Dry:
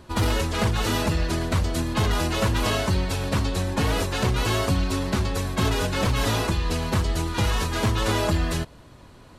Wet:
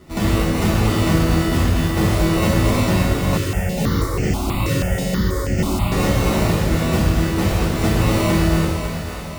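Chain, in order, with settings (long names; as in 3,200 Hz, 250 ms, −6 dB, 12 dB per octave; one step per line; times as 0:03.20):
high-pass filter 92 Hz 6 dB per octave
low-shelf EQ 470 Hz +9.5 dB
decimation without filtering 27×
echo with a time of its own for lows and highs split 450 Hz, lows 325 ms, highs 551 ms, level −7.5 dB
convolution reverb, pre-delay 3 ms, DRR −6.5 dB
0:03.37–0:05.92: step-sequenced phaser 6.2 Hz 210–3,800 Hz
level −6 dB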